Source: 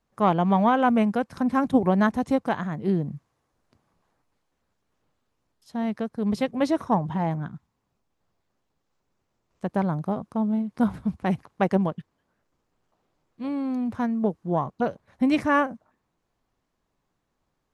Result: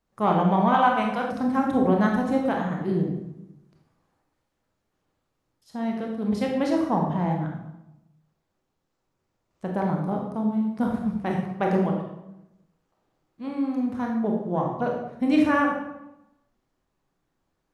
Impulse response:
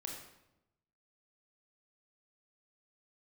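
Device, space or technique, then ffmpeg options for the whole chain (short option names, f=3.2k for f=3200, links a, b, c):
bathroom: -filter_complex "[1:a]atrim=start_sample=2205[a];[0:a][a]afir=irnorm=-1:irlink=0,asettb=1/sr,asplit=3[b][c][d];[b]atrim=end=0.744[e];[c]atrim=start=0.74:end=1.31,asetpts=PTS-STARTPTS,afade=t=in:d=0.004:c=qsin,afade=t=out:st=0.566:d=0.004:c=qsin,equalizer=f=250:t=o:w=1:g=-7,equalizer=f=500:t=o:w=1:g=-4,equalizer=f=1k:t=o:w=1:g=7,equalizer=f=4k:t=o:w=1:g=7[f];[d]atrim=start=1.306[g];[e][f]acrossfade=d=0.004:c1=hsin:c2=qsin[h];[h][g]acrossfade=d=0.004:c1=qsin:c2=hsin,volume=1.5dB"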